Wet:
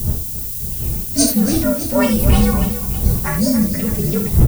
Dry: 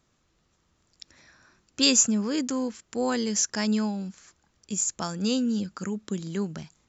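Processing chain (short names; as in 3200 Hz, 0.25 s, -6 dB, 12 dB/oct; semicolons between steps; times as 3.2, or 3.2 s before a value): inharmonic rescaling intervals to 122%; wind noise 100 Hz -29 dBFS; air absorption 65 m; non-linear reverb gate 0.15 s flat, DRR 3 dB; time stretch by phase-locked vocoder 0.65×; added noise violet -46 dBFS; high shelf 3500 Hz +9.5 dB; on a send: tapped delay 0.284/0.61 s -11.5/-15.5 dB; on the sum: maximiser +11.5 dB; gain -1 dB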